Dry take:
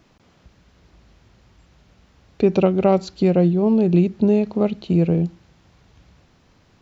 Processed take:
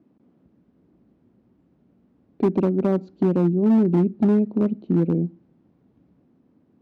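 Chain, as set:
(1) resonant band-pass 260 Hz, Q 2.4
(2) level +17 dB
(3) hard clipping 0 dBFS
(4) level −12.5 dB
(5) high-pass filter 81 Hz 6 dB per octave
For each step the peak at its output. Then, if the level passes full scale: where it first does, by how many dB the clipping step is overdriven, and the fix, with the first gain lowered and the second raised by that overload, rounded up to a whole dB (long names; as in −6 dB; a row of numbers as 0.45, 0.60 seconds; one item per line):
−11.0, +6.0, 0.0, −12.5, −10.5 dBFS
step 2, 6.0 dB
step 2 +11 dB, step 4 −6.5 dB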